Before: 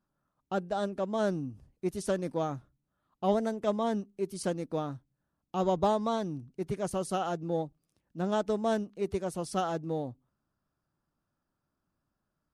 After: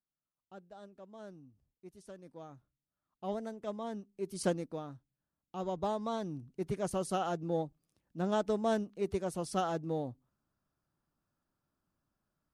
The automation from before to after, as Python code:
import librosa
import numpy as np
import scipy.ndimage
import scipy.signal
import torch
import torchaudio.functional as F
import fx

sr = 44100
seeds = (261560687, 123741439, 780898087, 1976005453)

y = fx.gain(x, sr, db=fx.line((2.13, -20.0), (3.33, -10.0), (4.05, -10.0), (4.48, 1.0), (4.79, -9.0), (5.7, -9.0), (6.57, -2.0)))